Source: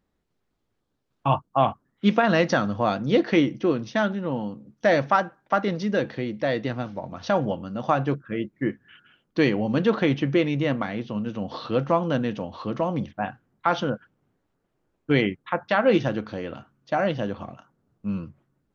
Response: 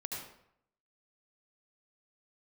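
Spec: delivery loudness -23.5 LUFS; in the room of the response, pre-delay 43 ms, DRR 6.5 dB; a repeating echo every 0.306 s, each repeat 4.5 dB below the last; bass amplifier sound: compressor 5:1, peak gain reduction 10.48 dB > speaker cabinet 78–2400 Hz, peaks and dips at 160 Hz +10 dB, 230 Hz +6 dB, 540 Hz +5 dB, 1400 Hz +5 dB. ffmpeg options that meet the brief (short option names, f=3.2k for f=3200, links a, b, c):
-filter_complex "[0:a]aecho=1:1:306|612|918|1224|1530|1836|2142|2448|2754:0.596|0.357|0.214|0.129|0.0772|0.0463|0.0278|0.0167|0.01,asplit=2[a][b];[1:a]atrim=start_sample=2205,adelay=43[c];[b][c]afir=irnorm=-1:irlink=0,volume=-7dB[d];[a][d]amix=inputs=2:normalize=0,acompressor=threshold=-23dB:ratio=5,highpass=f=78:w=0.5412,highpass=f=78:w=1.3066,equalizer=f=160:t=q:w=4:g=10,equalizer=f=230:t=q:w=4:g=6,equalizer=f=540:t=q:w=4:g=5,equalizer=f=1.4k:t=q:w=4:g=5,lowpass=f=2.4k:w=0.5412,lowpass=f=2.4k:w=1.3066,volume=0.5dB"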